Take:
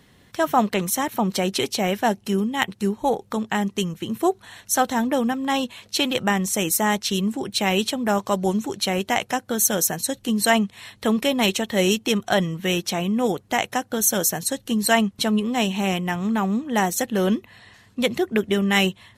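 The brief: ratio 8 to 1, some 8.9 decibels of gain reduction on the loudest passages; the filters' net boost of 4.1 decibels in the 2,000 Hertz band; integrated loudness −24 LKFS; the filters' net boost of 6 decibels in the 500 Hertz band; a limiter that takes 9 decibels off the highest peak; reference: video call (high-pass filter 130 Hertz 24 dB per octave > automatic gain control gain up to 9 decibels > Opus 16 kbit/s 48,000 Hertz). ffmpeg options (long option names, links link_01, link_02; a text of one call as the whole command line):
ffmpeg -i in.wav -af "equalizer=frequency=500:width_type=o:gain=7.5,equalizer=frequency=2000:width_type=o:gain=4.5,acompressor=threshold=-19dB:ratio=8,alimiter=limit=-14dB:level=0:latency=1,highpass=frequency=130:width=0.5412,highpass=frequency=130:width=1.3066,dynaudnorm=maxgain=9dB,volume=-0.5dB" -ar 48000 -c:a libopus -b:a 16k out.opus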